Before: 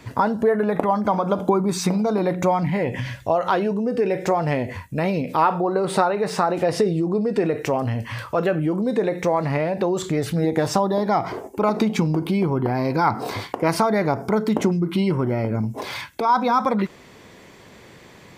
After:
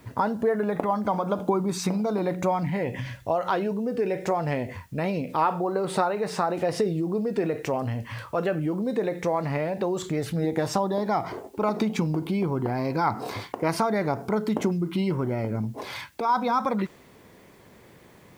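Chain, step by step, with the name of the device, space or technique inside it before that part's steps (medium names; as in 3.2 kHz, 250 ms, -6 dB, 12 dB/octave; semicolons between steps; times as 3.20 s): plain cassette with noise reduction switched in (tape noise reduction on one side only decoder only; wow and flutter 22 cents; white noise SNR 38 dB); trim -5 dB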